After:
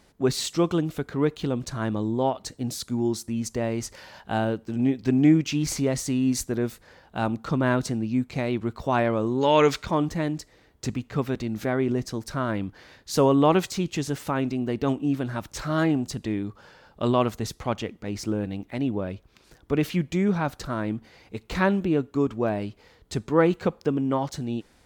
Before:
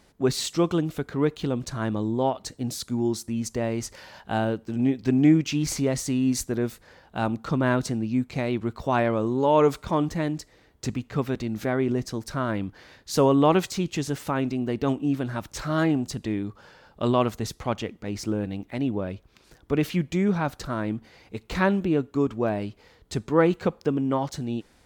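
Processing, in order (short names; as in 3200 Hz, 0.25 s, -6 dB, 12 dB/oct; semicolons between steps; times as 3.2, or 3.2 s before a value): 9.41–9.86 band shelf 3200 Hz +10 dB 2.4 oct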